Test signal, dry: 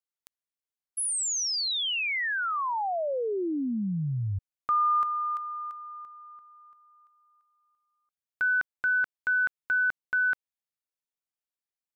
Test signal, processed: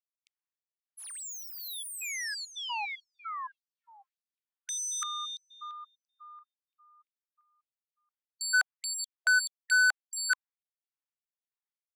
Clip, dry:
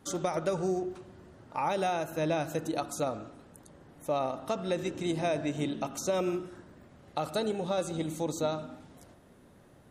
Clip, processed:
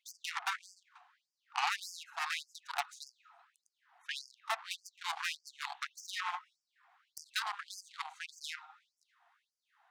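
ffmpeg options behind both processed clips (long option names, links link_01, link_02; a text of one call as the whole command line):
ffmpeg -i in.wav -af "adynamicsmooth=sensitivity=5:basefreq=2900,aeval=exprs='0.119*(cos(1*acos(clip(val(0)/0.119,-1,1)))-cos(1*PI/2))+0.0335*(cos(7*acos(clip(val(0)/0.119,-1,1)))-cos(7*PI/2))':channel_layout=same,afftfilt=real='re*gte(b*sr/1024,650*pow(4700/650,0.5+0.5*sin(2*PI*1.7*pts/sr)))':imag='im*gte(b*sr/1024,650*pow(4700/650,0.5+0.5*sin(2*PI*1.7*pts/sr)))':win_size=1024:overlap=0.75" out.wav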